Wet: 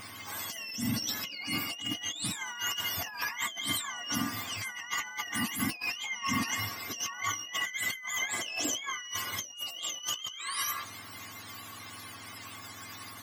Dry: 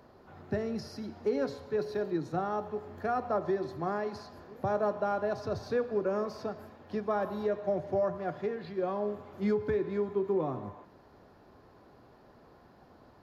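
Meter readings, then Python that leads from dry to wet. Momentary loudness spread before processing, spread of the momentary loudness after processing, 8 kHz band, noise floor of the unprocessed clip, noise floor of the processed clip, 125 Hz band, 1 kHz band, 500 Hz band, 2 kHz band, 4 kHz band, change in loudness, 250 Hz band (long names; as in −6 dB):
8 LU, 12 LU, can't be measured, −58 dBFS, −46 dBFS, −2.5 dB, −3.0 dB, −21.0 dB, +11.5 dB, +21.0 dB, −0.5 dB, −3.5 dB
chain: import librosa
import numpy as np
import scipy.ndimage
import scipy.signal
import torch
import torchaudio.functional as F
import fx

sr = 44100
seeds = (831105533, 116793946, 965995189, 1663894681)

y = fx.octave_mirror(x, sr, pivot_hz=1100.0)
y = fx.high_shelf(y, sr, hz=3400.0, db=9.5)
y = fx.over_compress(y, sr, threshold_db=-43.0, ratio=-1.0)
y = fx.low_shelf(y, sr, hz=160.0, db=7.5)
y = fx.small_body(y, sr, hz=(1100.0, 2100.0), ring_ms=85, db=14)
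y = F.gain(torch.from_numpy(y), 5.0).numpy()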